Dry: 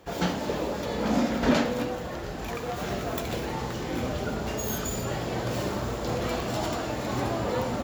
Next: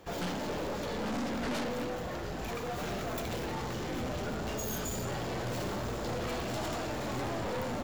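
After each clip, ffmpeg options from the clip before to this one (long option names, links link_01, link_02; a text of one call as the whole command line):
ffmpeg -i in.wav -af "aeval=exprs='(tanh(39.8*val(0)+0.3)-tanh(0.3))/39.8':channel_layout=same" out.wav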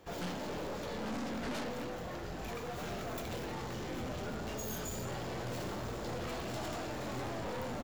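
ffmpeg -i in.wav -filter_complex "[0:a]asplit=2[link_01][link_02];[link_02]adelay=23,volume=-12.5dB[link_03];[link_01][link_03]amix=inputs=2:normalize=0,volume=-4.5dB" out.wav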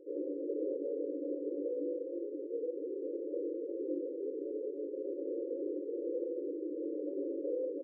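ffmpeg -i in.wav -af "afftfilt=real='re*between(b*sr/4096,270,560)':imag='im*between(b*sr/4096,270,560)':win_size=4096:overlap=0.75,volume=7.5dB" out.wav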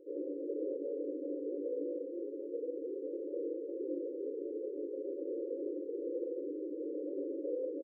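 ffmpeg -i in.wav -filter_complex "[0:a]asplit=2[link_01][link_02];[link_02]adelay=874.6,volume=-9dB,highshelf=frequency=4000:gain=-19.7[link_03];[link_01][link_03]amix=inputs=2:normalize=0,volume=-1.5dB" out.wav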